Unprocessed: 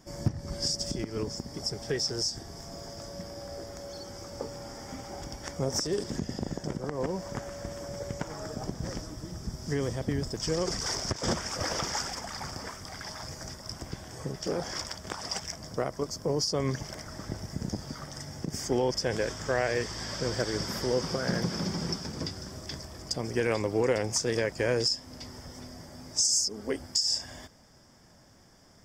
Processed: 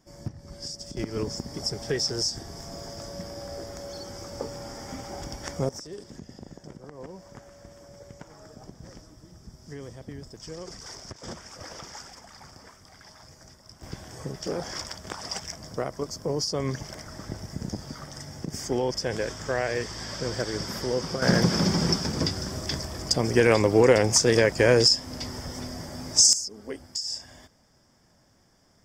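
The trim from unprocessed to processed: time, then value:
-7 dB
from 0.97 s +3 dB
from 5.69 s -10 dB
from 13.83 s +0.5 dB
from 21.22 s +8.5 dB
from 26.33 s -4.5 dB

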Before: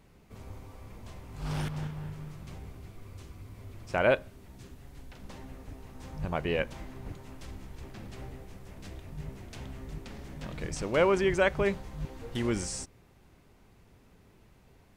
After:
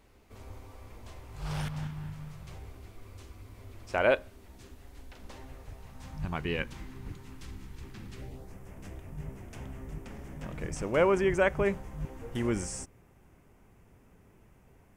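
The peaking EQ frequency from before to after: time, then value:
peaking EQ -12.5 dB 0.64 oct
1.13 s 160 Hz
1.99 s 520 Hz
2.79 s 150 Hz
5.26 s 150 Hz
6.44 s 620 Hz
8.13 s 620 Hz
8.55 s 4.1 kHz

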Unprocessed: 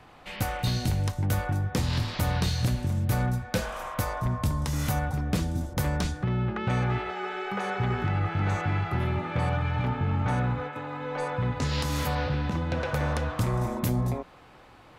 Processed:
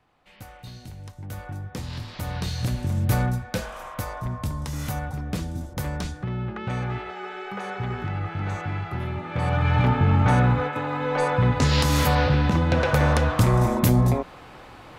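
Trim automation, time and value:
0.95 s -14 dB
1.55 s -6.5 dB
2.06 s -6.5 dB
3.12 s +4.5 dB
3.70 s -2 dB
9.24 s -2 dB
9.72 s +8 dB

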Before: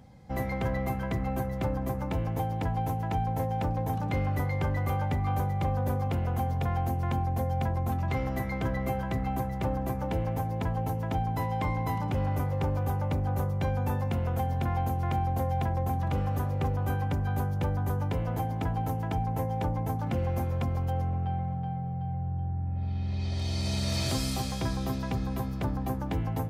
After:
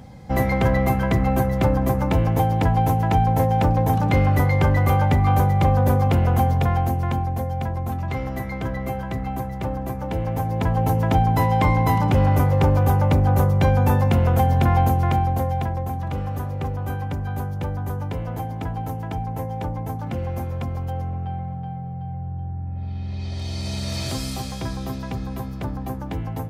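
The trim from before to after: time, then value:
6.41 s +11 dB
7.51 s +3 dB
10.01 s +3 dB
10.97 s +11.5 dB
14.83 s +11.5 dB
15.90 s +2 dB

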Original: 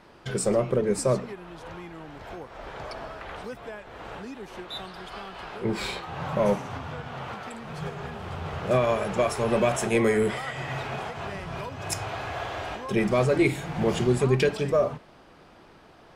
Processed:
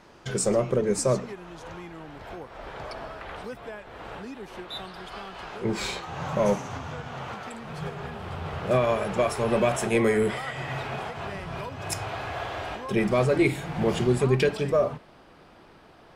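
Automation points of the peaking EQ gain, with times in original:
peaking EQ 6.5 kHz 0.48 oct
1.58 s +7 dB
2.17 s -2 dB
4.86 s -2 dB
5.90 s +8.5 dB
6.85 s +8.5 dB
7.91 s -2.5 dB

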